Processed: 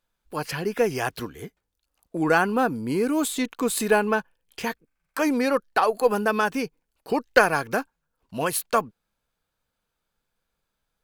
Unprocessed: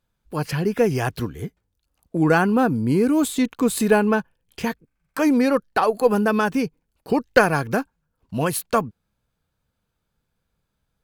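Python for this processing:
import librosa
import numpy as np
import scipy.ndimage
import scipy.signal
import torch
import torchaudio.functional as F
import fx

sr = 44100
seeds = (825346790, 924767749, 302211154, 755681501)

y = fx.peak_eq(x, sr, hz=100.0, db=-12.0, octaves=2.9)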